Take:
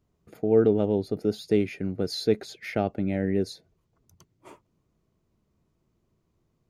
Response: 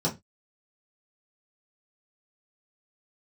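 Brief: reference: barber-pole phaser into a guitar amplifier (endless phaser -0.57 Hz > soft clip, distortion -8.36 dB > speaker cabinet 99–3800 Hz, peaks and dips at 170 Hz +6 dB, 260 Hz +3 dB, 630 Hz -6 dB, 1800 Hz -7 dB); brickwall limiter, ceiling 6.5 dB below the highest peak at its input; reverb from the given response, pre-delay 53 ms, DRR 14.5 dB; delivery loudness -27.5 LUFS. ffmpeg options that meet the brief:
-filter_complex "[0:a]alimiter=limit=-14.5dB:level=0:latency=1,asplit=2[a][b];[1:a]atrim=start_sample=2205,adelay=53[c];[b][c]afir=irnorm=-1:irlink=0,volume=-24dB[d];[a][d]amix=inputs=2:normalize=0,asplit=2[e][f];[f]afreqshift=-0.57[g];[e][g]amix=inputs=2:normalize=1,asoftclip=threshold=-30dB,highpass=99,equalizer=f=170:t=q:w=4:g=6,equalizer=f=260:t=q:w=4:g=3,equalizer=f=630:t=q:w=4:g=-6,equalizer=f=1.8k:t=q:w=4:g=-7,lowpass=f=3.8k:w=0.5412,lowpass=f=3.8k:w=1.3066,volume=9dB"

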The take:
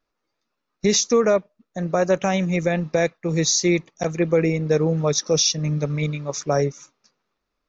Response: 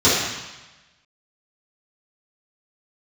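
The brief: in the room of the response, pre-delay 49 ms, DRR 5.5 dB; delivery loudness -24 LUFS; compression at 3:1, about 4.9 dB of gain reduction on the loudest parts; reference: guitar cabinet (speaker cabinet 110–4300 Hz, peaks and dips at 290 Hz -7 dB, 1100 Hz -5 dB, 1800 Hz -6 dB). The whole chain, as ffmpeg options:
-filter_complex "[0:a]acompressor=threshold=-20dB:ratio=3,asplit=2[a][b];[1:a]atrim=start_sample=2205,adelay=49[c];[b][c]afir=irnorm=-1:irlink=0,volume=-28.5dB[d];[a][d]amix=inputs=2:normalize=0,highpass=110,equalizer=f=290:t=q:w=4:g=-7,equalizer=f=1.1k:t=q:w=4:g=-5,equalizer=f=1.8k:t=q:w=4:g=-6,lowpass=f=4.3k:w=0.5412,lowpass=f=4.3k:w=1.3066,volume=1.5dB"

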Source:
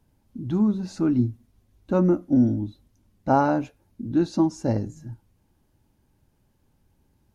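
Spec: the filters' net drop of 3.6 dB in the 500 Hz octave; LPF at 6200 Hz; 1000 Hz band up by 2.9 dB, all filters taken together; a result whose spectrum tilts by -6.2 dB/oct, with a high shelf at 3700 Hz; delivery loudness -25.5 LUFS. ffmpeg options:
-af "lowpass=6.2k,equalizer=f=500:t=o:g=-7.5,equalizer=f=1k:t=o:g=7,highshelf=f=3.7k:g=-5,volume=-0.5dB"

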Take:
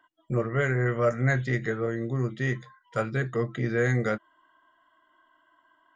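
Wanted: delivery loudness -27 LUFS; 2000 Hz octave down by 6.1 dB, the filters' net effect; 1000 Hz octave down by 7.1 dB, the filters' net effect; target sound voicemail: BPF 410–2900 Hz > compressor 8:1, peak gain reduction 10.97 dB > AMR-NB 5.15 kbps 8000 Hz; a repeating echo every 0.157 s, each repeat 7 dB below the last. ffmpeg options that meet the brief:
-af "highpass=410,lowpass=2.9k,equalizer=f=1k:t=o:g=-9,equalizer=f=2k:t=o:g=-3.5,aecho=1:1:157|314|471|628|785:0.447|0.201|0.0905|0.0407|0.0183,acompressor=threshold=-34dB:ratio=8,volume=14dB" -ar 8000 -c:a libopencore_amrnb -b:a 5150

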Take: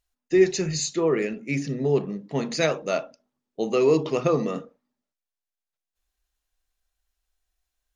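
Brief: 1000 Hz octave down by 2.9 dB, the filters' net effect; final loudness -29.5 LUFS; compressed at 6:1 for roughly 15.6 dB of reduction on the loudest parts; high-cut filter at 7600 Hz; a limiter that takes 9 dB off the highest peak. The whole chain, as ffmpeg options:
-af "lowpass=7.6k,equalizer=f=1k:t=o:g=-4,acompressor=threshold=-30dB:ratio=6,volume=8.5dB,alimiter=limit=-20.5dB:level=0:latency=1"

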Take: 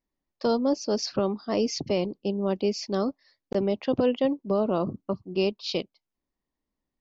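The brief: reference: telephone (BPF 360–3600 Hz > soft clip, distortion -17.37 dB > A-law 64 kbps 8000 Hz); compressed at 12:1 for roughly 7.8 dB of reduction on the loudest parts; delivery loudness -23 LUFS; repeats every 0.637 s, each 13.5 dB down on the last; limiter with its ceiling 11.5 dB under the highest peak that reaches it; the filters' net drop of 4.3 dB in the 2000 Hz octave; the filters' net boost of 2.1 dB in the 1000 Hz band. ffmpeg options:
-af "equalizer=f=1k:t=o:g=4.5,equalizer=f=2k:t=o:g=-6.5,acompressor=threshold=-26dB:ratio=12,alimiter=level_in=3dB:limit=-24dB:level=0:latency=1,volume=-3dB,highpass=360,lowpass=3.6k,aecho=1:1:637|1274:0.211|0.0444,asoftclip=threshold=-33dB,volume=20dB" -ar 8000 -c:a pcm_alaw

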